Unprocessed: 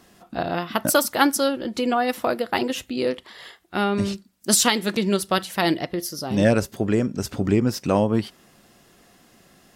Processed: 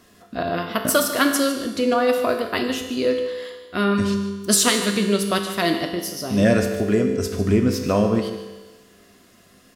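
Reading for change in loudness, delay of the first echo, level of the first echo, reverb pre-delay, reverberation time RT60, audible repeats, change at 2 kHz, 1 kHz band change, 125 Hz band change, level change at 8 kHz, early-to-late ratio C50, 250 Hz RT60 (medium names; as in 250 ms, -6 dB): +1.5 dB, 150 ms, -13.0 dB, 5 ms, 1.3 s, 1, +1.5 dB, -1.0 dB, +1.5 dB, +1.5 dB, 6.0 dB, 1.3 s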